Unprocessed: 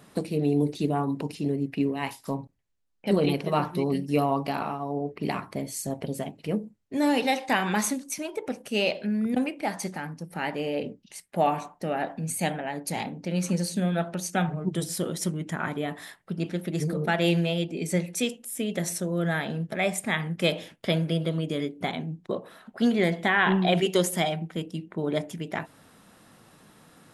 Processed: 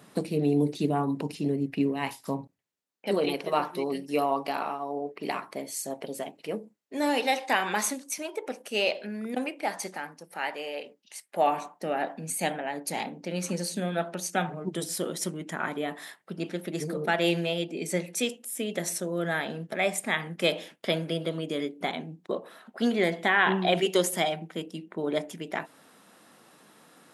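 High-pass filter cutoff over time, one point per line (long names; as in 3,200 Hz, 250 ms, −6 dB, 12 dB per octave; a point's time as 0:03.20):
0:02.22 120 Hz
0:03.21 360 Hz
0:09.90 360 Hz
0:10.90 780 Hz
0:11.65 250 Hz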